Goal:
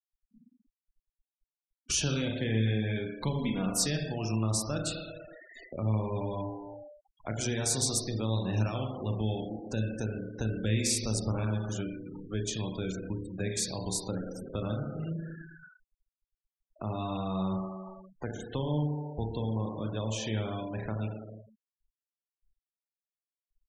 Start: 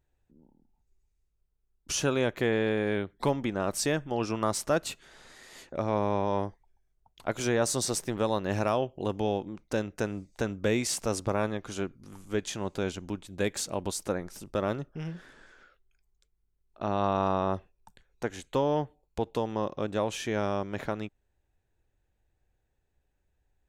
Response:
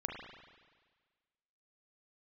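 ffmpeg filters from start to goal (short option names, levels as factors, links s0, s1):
-filter_complex "[1:a]atrim=start_sample=2205,asetrate=57330,aresample=44100[s0];[0:a][s0]afir=irnorm=-1:irlink=0,acrossover=split=200|3000[s1][s2][s3];[s2]acompressor=threshold=0.00447:ratio=3[s4];[s1][s4][s3]amix=inputs=3:normalize=0,asplit=3[s5][s6][s7];[s5]afade=t=out:st=3.38:d=0.02[s8];[s6]aecho=1:1:4.2:0.67,afade=t=in:st=3.38:d=0.02,afade=t=out:st=3.86:d=0.02[s9];[s7]afade=t=in:st=3.86:d=0.02[s10];[s8][s9][s10]amix=inputs=3:normalize=0,asettb=1/sr,asplit=3[s11][s12][s13];[s11]atrim=end=12.924[s14];[s12]atrim=start=12.92:end=13.52,asetpts=PTS-STARTPTS,afade=t=in:d=0.004:c=qsin,afade=t=out:st=0.596:d=0.004:c=qsin,asuperstop=centerf=3100:order=4:qfactor=2.6[s15];[s13]atrim=start=13.516[s16];[s14][s15]acrossfade=d=0.004:c1=hsin:c2=qsin[s17];[s17][s16]acrossfade=d=0.004:c1=qsin:c2=hsin,afftfilt=real='re*gte(hypot(re,im),0.00631)':imag='im*gte(hypot(re,im),0.00631)':win_size=1024:overlap=0.75,volume=2"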